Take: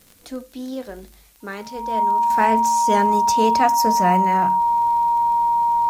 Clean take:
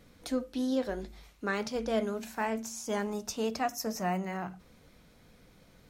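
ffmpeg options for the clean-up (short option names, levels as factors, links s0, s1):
-af "adeclick=t=4,bandreject=f=940:w=30,agate=range=0.0891:threshold=0.00891,asetnsamples=n=441:p=0,asendcmd='2.3 volume volume -11.5dB',volume=1"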